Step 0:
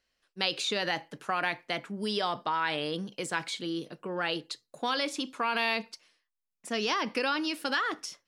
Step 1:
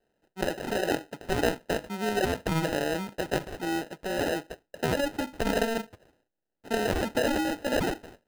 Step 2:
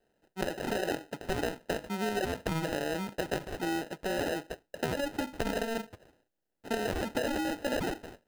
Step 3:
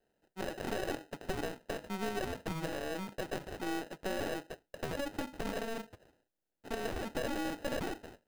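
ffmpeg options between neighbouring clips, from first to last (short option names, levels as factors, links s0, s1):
-filter_complex "[0:a]acrossover=split=3400[s0][s1];[s1]acompressor=threshold=0.00355:ratio=4:attack=1:release=60[s2];[s0][s2]amix=inputs=2:normalize=0,acrusher=samples=39:mix=1:aa=0.000001,bass=f=250:g=-6,treble=f=4000:g=-4,volume=1.88"
-af "acompressor=threshold=0.0355:ratio=6,volume=1.12"
-af "aeval=exprs='(tanh(22.4*val(0)+0.75)-tanh(0.75))/22.4':c=same"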